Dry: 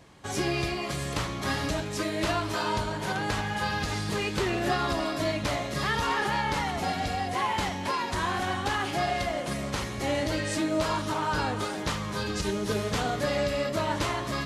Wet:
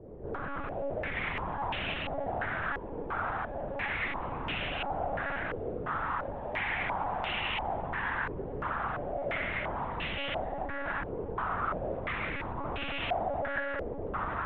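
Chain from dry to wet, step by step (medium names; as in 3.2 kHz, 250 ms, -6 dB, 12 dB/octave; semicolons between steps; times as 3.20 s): compressor with a negative ratio -31 dBFS, ratio -0.5; peak limiter -29 dBFS, peak gain reduction 10.5 dB; Schroeder reverb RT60 1.1 s, combs from 33 ms, DRR -6 dB; wavefolder -30.5 dBFS; monotone LPC vocoder at 8 kHz 280 Hz; step-sequenced low-pass 2.9 Hz 450–2800 Hz; trim -1.5 dB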